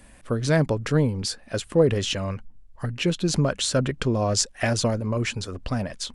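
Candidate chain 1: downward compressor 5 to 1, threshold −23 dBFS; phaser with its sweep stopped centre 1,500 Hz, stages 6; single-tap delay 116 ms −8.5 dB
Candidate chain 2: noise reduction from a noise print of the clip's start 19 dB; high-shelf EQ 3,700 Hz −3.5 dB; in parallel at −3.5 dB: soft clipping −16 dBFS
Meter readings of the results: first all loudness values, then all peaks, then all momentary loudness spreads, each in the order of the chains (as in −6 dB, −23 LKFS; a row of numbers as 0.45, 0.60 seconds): −32.0, −22.0 LKFS; −16.5, −4.5 dBFS; 6, 11 LU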